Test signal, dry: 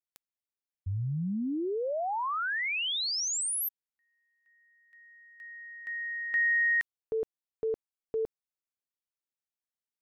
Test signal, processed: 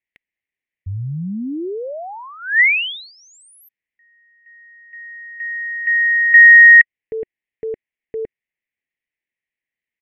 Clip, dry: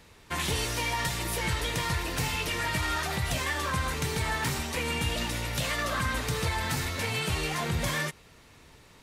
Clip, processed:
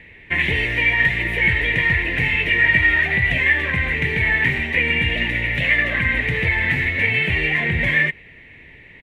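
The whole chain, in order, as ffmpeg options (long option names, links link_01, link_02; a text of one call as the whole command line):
ffmpeg -i in.wav -af "firequalizer=gain_entry='entry(370,0);entry(1300,-14);entry(1900,15);entry(4900,-24)':delay=0.05:min_phase=1,volume=7dB" out.wav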